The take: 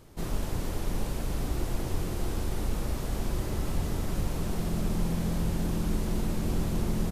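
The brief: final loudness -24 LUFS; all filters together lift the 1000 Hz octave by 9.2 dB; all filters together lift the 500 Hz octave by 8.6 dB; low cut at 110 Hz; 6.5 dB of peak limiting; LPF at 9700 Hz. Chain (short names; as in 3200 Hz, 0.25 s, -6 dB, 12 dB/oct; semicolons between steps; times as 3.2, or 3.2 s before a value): HPF 110 Hz; LPF 9700 Hz; bell 500 Hz +9 dB; bell 1000 Hz +8.5 dB; gain +9 dB; limiter -14.5 dBFS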